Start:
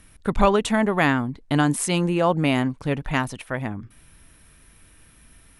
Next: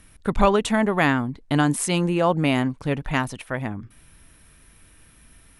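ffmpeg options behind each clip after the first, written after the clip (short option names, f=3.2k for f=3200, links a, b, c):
-af anull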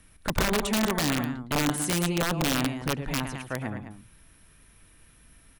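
-filter_complex "[0:a]acrossover=split=380|3000[a][b][c];[b]acompressor=threshold=-23dB:ratio=6[d];[a][d][c]amix=inputs=3:normalize=0,aecho=1:1:110.8|209.9:0.316|0.282,aeval=exprs='(mod(4.73*val(0)+1,2)-1)/4.73':c=same,volume=-4.5dB"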